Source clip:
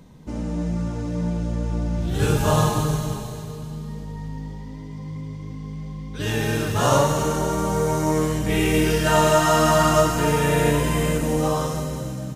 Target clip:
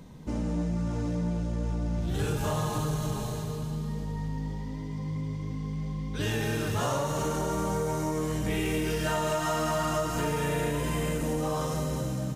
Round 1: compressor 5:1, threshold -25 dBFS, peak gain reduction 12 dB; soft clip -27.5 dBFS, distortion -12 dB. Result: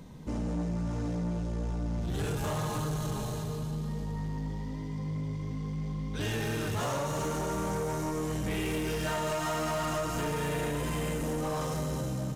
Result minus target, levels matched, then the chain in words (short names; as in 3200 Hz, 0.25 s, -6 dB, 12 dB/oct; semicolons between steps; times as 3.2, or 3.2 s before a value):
soft clip: distortion +10 dB
compressor 5:1, threshold -25 dBFS, peak gain reduction 12 dB; soft clip -19.5 dBFS, distortion -22 dB